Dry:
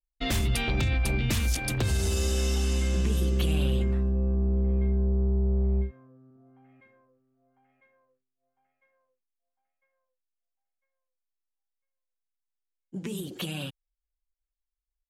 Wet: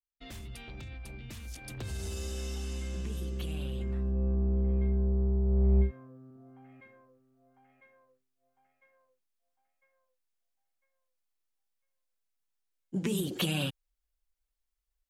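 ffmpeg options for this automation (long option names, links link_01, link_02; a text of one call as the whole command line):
ffmpeg -i in.wav -af "volume=3.5dB,afade=type=in:start_time=1.42:duration=0.62:silence=0.421697,afade=type=in:start_time=3.75:duration=0.5:silence=0.421697,afade=type=in:start_time=5.45:duration=0.42:silence=0.473151" out.wav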